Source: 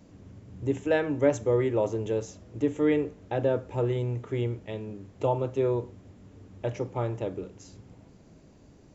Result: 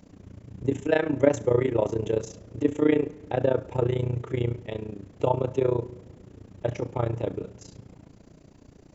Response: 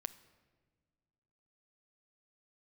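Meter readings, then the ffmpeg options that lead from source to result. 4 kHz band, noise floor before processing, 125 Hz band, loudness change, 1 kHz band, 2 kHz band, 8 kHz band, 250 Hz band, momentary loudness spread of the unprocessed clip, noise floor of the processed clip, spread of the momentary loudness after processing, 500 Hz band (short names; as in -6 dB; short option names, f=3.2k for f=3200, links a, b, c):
+2.0 dB, -55 dBFS, +2.0 dB, +2.0 dB, +2.0 dB, +2.0 dB, n/a, +2.0 dB, 13 LU, -54 dBFS, 15 LU, +2.0 dB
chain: -filter_complex "[0:a]tremolo=f=29:d=0.889,asplit=2[a][b];[1:a]atrim=start_sample=2205[c];[b][c]afir=irnorm=-1:irlink=0,volume=2.5dB[d];[a][d]amix=inputs=2:normalize=0"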